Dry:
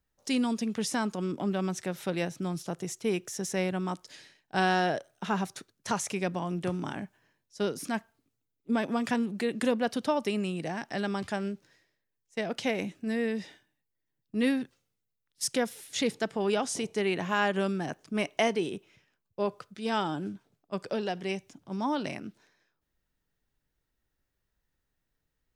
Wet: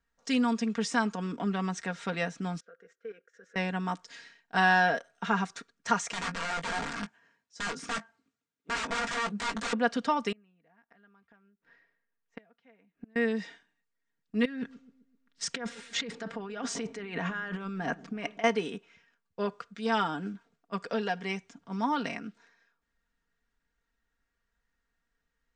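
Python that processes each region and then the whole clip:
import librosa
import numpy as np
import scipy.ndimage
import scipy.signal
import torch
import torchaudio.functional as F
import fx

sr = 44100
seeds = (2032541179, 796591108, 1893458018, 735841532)

y = fx.chain(x, sr, fx.double_bandpass(hz=870.0, octaves=1.6),
    fx.level_steps(step_db=13), at=(2.6, 3.56))
y = fx.chain(y, sr, fx.highpass(hz=67.0, slope=12),
    fx.overflow_wrap(gain_db=30.0),
    fx.doubler(ms=19.0, db=-10.0), at=(6.12, 9.73))
y = fx.chain(y, sr, fx.lowpass(hz=2400.0, slope=12),
    fx.gate_flip(shuts_db=-30.0, range_db=-32), at=(10.32, 13.16))
y = fx.chain(y, sr, fx.lowpass(hz=3300.0, slope=6),
    fx.over_compress(threshold_db=-36.0, ratio=-1.0),
    fx.echo_wet_lowpass(ms=129, feedback_pct=47, hz=410.0, wet_db=-15), at=(14.45, 18.44))
y = scipy.signal.sosfilt(scipy.signal.butter(8, 8400.0, 'lowpass', fs=sr, output='sos'), y)
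y = fx.peak_eq(y, sr, hz=1500.0, db=8.5, octaves=1.3)
y = y + 0.67 * np.pad(y, (int(4.3 * sr / 1000.0), 0))[:len(y)]
y = y * librosa.db_to_amplitude(-3.5)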